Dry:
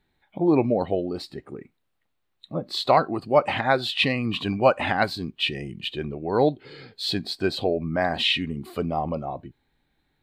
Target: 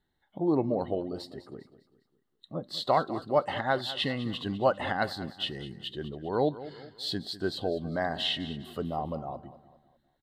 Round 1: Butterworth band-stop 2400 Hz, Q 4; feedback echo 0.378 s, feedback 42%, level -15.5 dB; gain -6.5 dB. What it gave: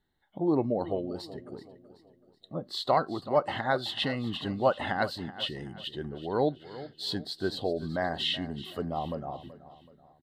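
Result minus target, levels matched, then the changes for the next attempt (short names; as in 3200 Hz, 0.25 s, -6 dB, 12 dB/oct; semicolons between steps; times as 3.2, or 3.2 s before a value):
echo 0.177 s late
change: feedback echo 0.201 s, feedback 42%, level -15.5 dB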